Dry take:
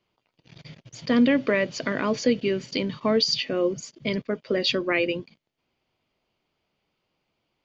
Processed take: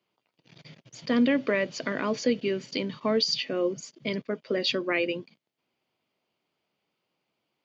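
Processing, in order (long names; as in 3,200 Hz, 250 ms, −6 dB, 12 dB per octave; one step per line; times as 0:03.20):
high-pass filter 150 Hz 12 dB per octave
level −3 dB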